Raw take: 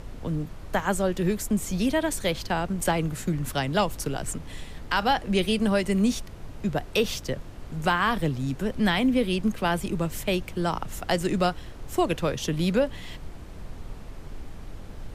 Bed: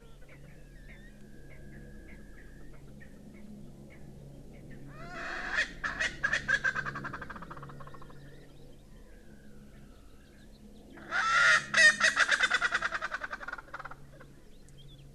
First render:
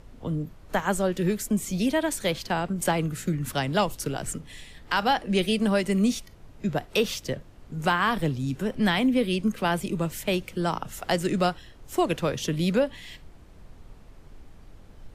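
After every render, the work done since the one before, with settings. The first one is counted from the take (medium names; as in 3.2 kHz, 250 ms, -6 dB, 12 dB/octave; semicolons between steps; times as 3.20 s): noise print and reduce 9 dB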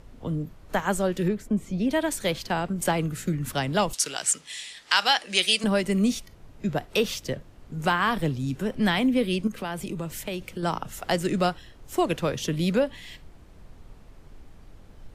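1.28–1.91 s: low-pass 1.2 kHz 6 dB/octave; 3.93–5.64 s: frequency weighting ITU-R 468; 9.47–10.63 s: compression 4:1, threshold -28 dBFS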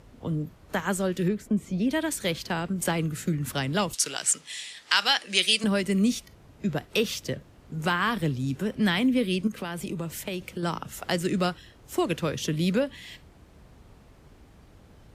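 high-pass 53 Hz; dynamic bell 740 Hz, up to -6 dB, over -38 dBFS, Q 1.4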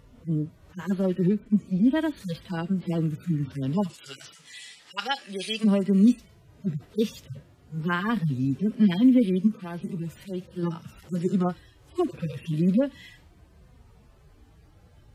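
harmonic-percussive separation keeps harmonic; dynamic bell 240 Hz, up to +6 dB, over -38 dBFS, Q 1.5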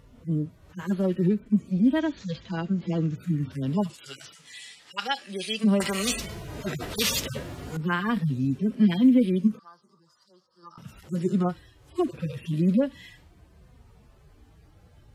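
1.99–3.16 s: careless resampling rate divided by 3×, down none, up filtered; 5.80–7.77 s: spectrum-flattening compressor 4:1; 9.59–10.78 s: two resonant band-passes 2.4 kHz, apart 2.1 oct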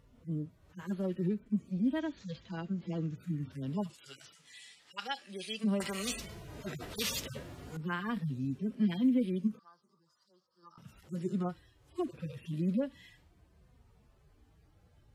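trim -9.5 dB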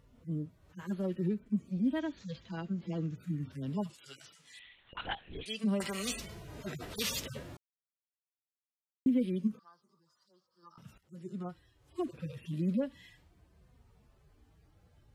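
4.59–5.46 s: LPC vocoder at 8 kHz whisper; 7.57–9.06 s: mute; 10.98–12.09 s: fade in, from -17 dB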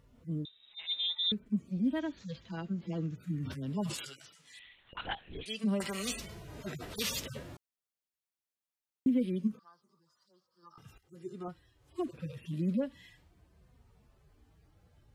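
0.45–1.32 s: frequency inversion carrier 3.8 kHz; 3.34–4.14 s: decay stretcher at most 57 dB/s; 10.73–11.48 s: comb 2.5 ms, depth 62%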